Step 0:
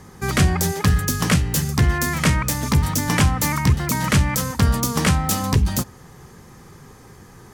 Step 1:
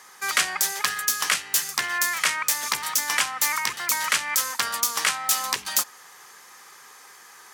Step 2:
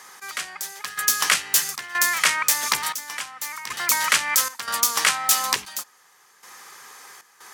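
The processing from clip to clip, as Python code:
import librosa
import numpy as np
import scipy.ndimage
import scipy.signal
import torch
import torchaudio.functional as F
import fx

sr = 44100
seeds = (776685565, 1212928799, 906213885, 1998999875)

y1 = scipy.signal.sosfilt(scipy.signal.butter(2, 1200.0, 'highpass', fs=sr, output='sos'), x)
y1 = fx.rider(y1, sr, range_db=10, speed_s=0.5)
y1 = y1 * librosa.db_to_amplitude(2.0)
y2 = fx.step_gate(y1, sr, bpm=77, pattern='x....xxxx.xxxx', floor_db=-12.0, edge_ms=4.5)
y2 = y2 * librosa.db_to_amplitude(3.5)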